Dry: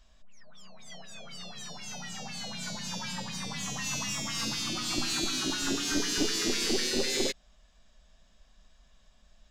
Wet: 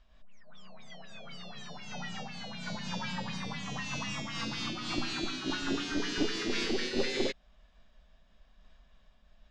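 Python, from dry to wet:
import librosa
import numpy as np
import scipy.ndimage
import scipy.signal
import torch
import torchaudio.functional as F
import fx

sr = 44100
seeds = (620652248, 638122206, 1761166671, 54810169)

y = scipy.signal.sosfilt(scipy.signal.butter(2, 3300.0, 'lowpass', fs=sr, output='sos'), x)
y = fx.am_noise(y, sr, seeds[0], hz=5.7, depth_pct=60)
y = F.gain(torch.from_numpy(y), 3.0).numpy()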